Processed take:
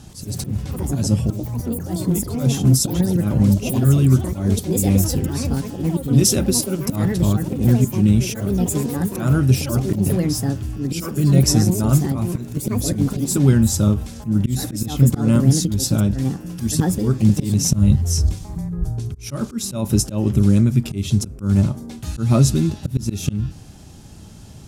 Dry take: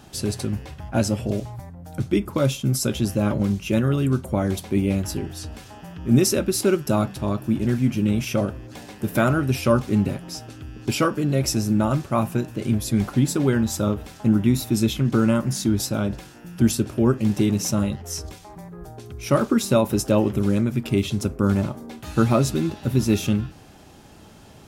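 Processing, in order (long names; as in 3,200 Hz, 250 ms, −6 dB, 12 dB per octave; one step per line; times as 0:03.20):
Bessel low-pass filter 10,000 Hz, order 2
volume swells 193 ms
bass and treble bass +13 dB, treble +12 dB
delay with pitch and tempo change per echo 93 ms, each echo +5 semitones, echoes 3, each echo −6 dB
0:17.71–0:19.09: low-shelf EQ 190 Hz +11 dB
level −2.5 dB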